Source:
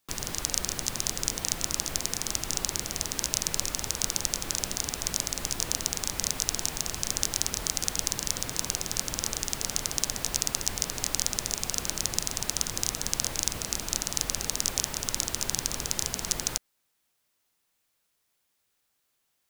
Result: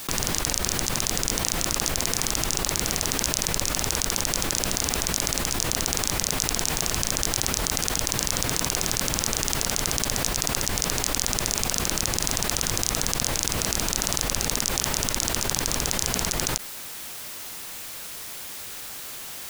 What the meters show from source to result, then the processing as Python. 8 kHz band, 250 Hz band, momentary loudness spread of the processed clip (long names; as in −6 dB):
+3.5 dB, +8.5 dB, 10 LU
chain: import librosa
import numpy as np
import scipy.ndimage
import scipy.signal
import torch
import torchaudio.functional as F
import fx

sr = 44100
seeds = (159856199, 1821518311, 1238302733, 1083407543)

y = fx.env_flatten(x, sr, amount_pct=100)
y = y * librosa.db_to_amplitude(-1.5)